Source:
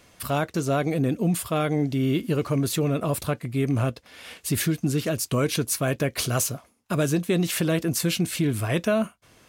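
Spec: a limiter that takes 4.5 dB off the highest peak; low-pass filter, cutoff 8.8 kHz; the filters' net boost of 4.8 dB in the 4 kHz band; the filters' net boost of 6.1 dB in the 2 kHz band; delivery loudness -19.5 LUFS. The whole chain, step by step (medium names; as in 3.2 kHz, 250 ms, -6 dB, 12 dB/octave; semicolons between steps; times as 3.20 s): low-pass 8.8 kHz; peaking EQ 2 kHz +7 dB; peaking EQ 4 kHz +4 dB; trim +5.5 dB; peak limiter -7.5 dBFS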